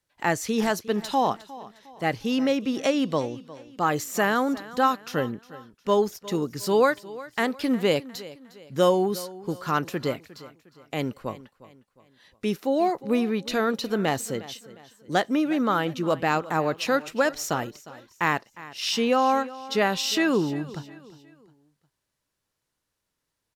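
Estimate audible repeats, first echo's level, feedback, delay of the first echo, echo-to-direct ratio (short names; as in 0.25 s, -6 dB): 3, -18.0 dB, 40%, 0.357 s, -17.5 dB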